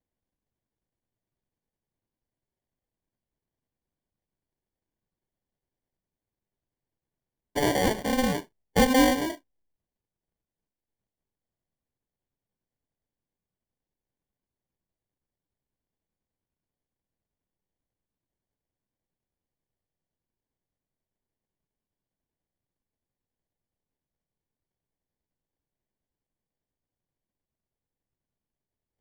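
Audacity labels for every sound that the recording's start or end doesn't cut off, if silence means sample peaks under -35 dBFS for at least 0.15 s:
7.560000	8.410000	sound
8.760000	9.350000	sound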